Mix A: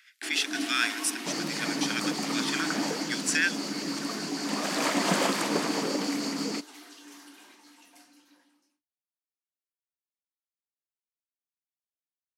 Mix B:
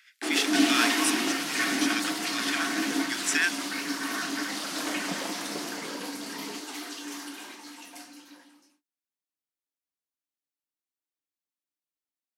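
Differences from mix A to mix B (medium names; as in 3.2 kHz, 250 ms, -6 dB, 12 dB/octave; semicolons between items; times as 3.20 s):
first sound +10.5 dB; second sound -10.0 dB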